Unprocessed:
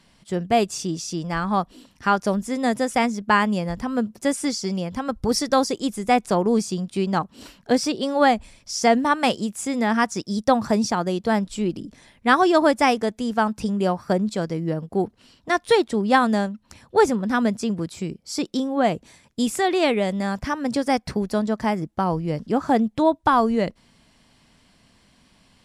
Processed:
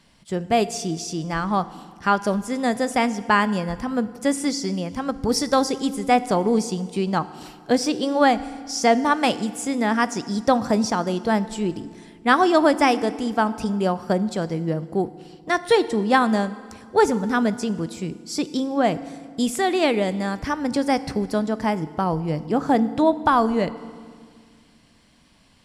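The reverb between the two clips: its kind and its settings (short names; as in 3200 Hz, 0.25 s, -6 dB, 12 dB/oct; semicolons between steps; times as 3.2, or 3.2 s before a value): FDN reverb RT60 1.9 s, low-frequency decay 1.35×, high-frequency decay 0.8×, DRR 14 dB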